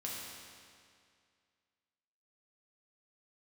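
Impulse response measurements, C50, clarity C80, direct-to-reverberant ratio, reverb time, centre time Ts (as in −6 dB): −1.0 dB, 0.5 dB, −5.0 dB, 2.2 s, 122 ms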